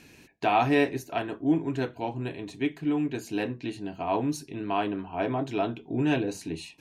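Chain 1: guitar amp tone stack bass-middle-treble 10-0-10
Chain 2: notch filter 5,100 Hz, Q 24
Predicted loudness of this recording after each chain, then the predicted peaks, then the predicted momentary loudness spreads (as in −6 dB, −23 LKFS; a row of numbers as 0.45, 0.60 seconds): −41.0, −29.0 LKFS; −19.5, −11.5 dBFS; 13, 10 LU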